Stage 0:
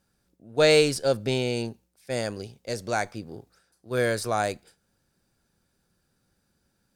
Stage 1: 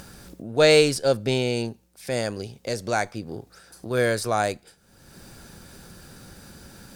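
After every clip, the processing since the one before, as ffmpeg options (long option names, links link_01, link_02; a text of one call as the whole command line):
ffmpeg -i in.wav -af "acompressor=mode=upward:threshold=-28dB:ratio=2.5,volume=2.5dB" out.wav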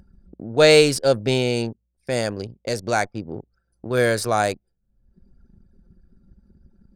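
ffmpeg -i in.wav -af "anlmdn=3.98,volume=3dB" out.wav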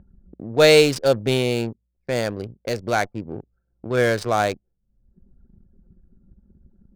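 ffmpeg -i in.wav -af "adynamicsmooth=sensitivity=4.5:basefreq=1100" out.wav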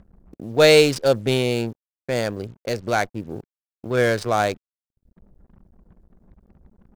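ffmpeg -i in.wav -af "acrusher=bits=8:mix=0:aa=0.5" out.wav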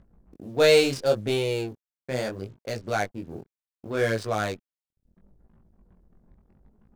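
ffmpeg -i in.wav -af "flanger=delay=18:depth=6:speed=0.72,volume=-2.5dB" out.wav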